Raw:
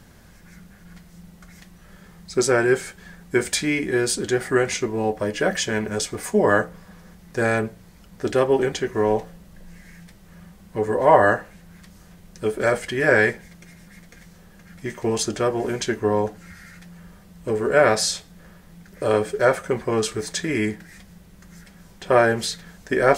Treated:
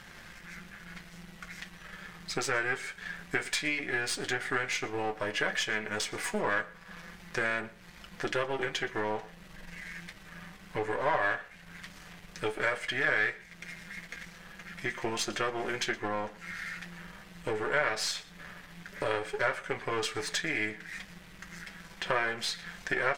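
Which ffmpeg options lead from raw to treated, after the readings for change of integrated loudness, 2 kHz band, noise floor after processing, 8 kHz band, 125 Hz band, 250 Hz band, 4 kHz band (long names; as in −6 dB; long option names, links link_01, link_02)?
−10.5 dB, −5.0 dB, −52 dBFS, −10.5 dB, −14.0 dB, −14.5 dB, −5.0 dB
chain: -af "aeval=exprs='if(lt(val(0),0),0.447*val(0),val(0))':channel_layout=same,equalizer=frequency=2200:width=0.42:gain=15,acompressor=threshold=-29dB:ratio=2.5,flanger=delay=5.6:depth=1.5:regen=-47:speed=0.13:shape=triangular,aecho=1:1:119:0.0841"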